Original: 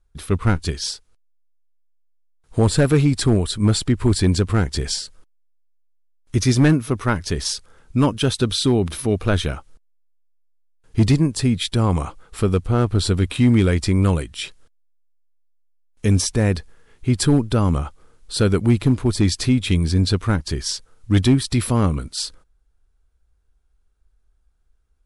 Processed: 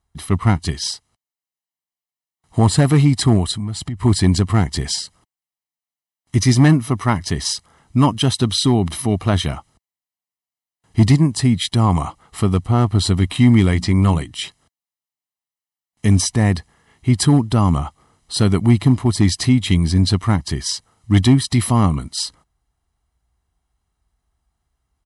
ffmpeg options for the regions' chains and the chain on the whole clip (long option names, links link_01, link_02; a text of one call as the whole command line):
ffmpeg -i in.wav -filter_complex "[0:a]asettb=1/sr,asplit=3[link_01][link_02][link_03];[link_01]atrim=end=3.514[link_04];[link_02]atrim=start=3.51:end=4.03,asetpts=PTS-STARTPTS,afade=type=in:duration=0.004:curve=qsin,afade=type=out:start_time=0.516:duration=0.004:curve=qsin,asubboost=boost=10.5:cutoff=230,acompressor=threshold=-24dB:ratio=10:attack=3.2:release=140:knee=1:detection=peak[link_05];[link_03]atrim=start=4.026[link_06];[link_04][link_05]acrossfade=duration=0.004:curve1=hsin:curve2=qsin[link_07];[link_07][link_06]acrossfade=duration=0.004:curve1=qsin:curve2=hsin,asettb=1/sr,asplit=3[link_08][link_09][link_10];[link_08]atrim=end=13.724[link_11];[link_09]atrim=start=13.72:end=14.31,asetpts=PTS-STARTPTS,afade=type=in:duration=0.004:curve=qsin,afade=type=out:start_time=0.586:duration=0.004:curve=qsin,acrossover=split=6800[link_12][link_13];[link_13]acompressor=threshold=-43dB:ratio=4:attack=1:release=60[link_14];[link_12][link_14]amix=inputs=2:normalize=0,bandreject=frequency=60:width_type=h:width=6,bandreject=frequency=120:width_type=h:width=6,bandreject=frequency=180:width_type=h:width=6,bandreject=frequency=240:width_type=h:width=6,bandreject=frequency=300:width_type=h:width=6[link_15];[link_10]atrim=start=14.306[link_16];[link_11][link_15]acrossfade=duration=0.004:curve1=hsin:curve2=qsin[link_17];[link_17][link_16]acrossfade=duration=0.004:curve1=qsin:curve2=hsin,highpass=92,equalizer=frequency=690:width=3.2:gain=5,aecho=1:1:1:0.59,volume=1.5dB" out.wav